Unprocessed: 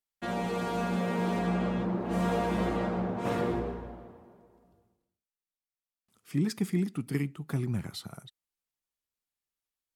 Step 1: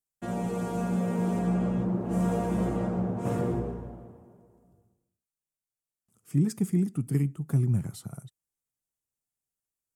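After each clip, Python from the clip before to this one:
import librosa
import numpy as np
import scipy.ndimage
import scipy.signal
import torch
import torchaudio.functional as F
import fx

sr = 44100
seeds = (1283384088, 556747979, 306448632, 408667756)

y = fx.graphic_eq_10(x, sr, hz=(125, 1000, 2000, 4000, 8000), db=(8, -3, -6, -11, 6))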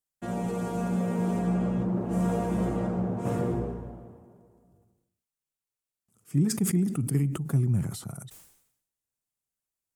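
y = fx.sustainer(x, sr, db_per_s=75.0)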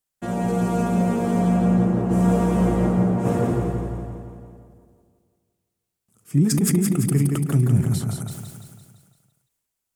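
y = fx.echo_feedback(x, sr, ms=170, feedback_pct=55, wet_db=-5.0)
y = y * 10.0 ** (6.0 / 20.0)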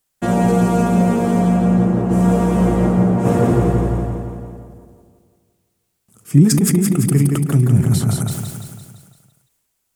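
y = fx.rider(x, sr, range_db=5, speed_s=0.5)
y = y * 10.0 ** (5.5 / 20.0)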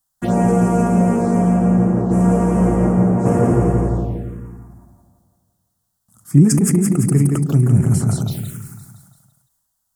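y = fx.env_phaser(x, sr, low_hz=410.0, high_hz=3800.0, full_db=-12.0)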